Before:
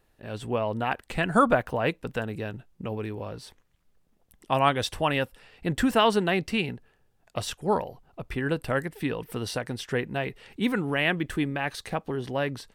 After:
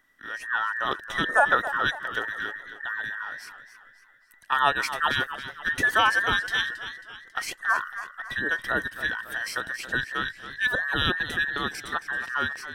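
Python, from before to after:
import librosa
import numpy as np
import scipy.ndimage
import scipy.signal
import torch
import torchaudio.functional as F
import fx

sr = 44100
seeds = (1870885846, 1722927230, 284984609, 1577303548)

y = fx.band_invert(x, sr, width_hz=2000)
y = fx.echo_warbled(y, sr, ms=274, feedback_pct=46, rate_hz=2.8, cents=94, wet_db=-12.0)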